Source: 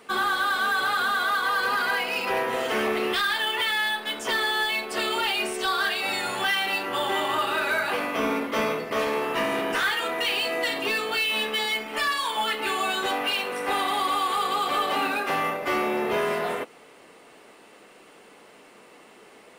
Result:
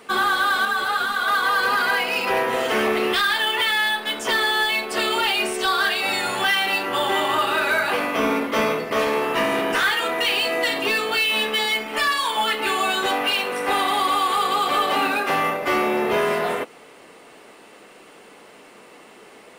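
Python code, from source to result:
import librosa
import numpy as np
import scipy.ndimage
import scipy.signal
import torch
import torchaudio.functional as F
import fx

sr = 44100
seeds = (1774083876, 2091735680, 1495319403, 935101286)

y = fx.ensemble(x, sr, at=(0.65, 1.28))
y = F.gain(torch.from_numpy(y), 4.5).numpy()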